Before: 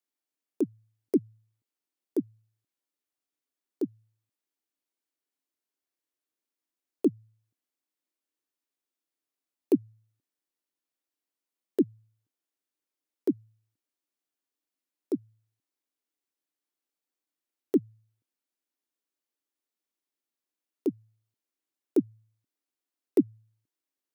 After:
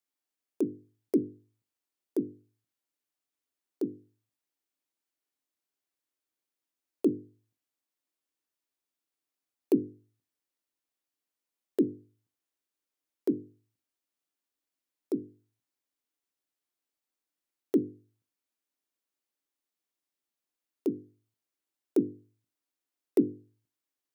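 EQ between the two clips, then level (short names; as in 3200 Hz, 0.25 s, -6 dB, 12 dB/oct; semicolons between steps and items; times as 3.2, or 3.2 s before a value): notches 50/100/150/200/250/300/350/400/450/500 Hz; 0.0 dB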